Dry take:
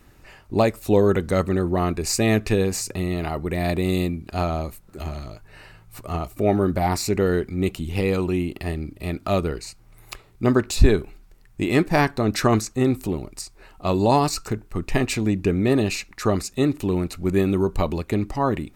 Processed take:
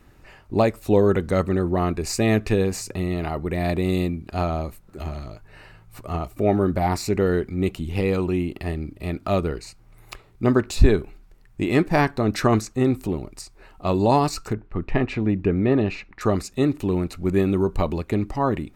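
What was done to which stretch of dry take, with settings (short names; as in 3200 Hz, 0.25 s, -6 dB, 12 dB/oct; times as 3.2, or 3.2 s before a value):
14.53–16.21 LPF 2700 Hz
whole clip: high shelf 3800 Hz -6 dB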